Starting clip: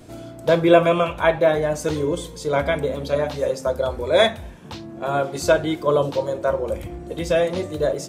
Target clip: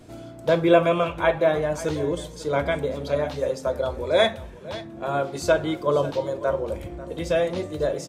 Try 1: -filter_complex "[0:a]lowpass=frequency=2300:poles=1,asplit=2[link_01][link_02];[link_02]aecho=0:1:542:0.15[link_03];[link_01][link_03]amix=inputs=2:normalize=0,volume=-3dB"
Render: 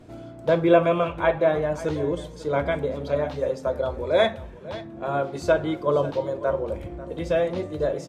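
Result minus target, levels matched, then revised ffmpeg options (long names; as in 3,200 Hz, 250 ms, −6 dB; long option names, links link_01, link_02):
8,000 Hz band −7.5 dB
-filter_complex "[0:a]lowpass=frequency=9000:poles=1,asplit=2[link_01][link_02];[link_02]aecho=0:1:542:0.15[link_03];[link_01][link_03]amix=inputs=2:normalize=0,volume=-3dB"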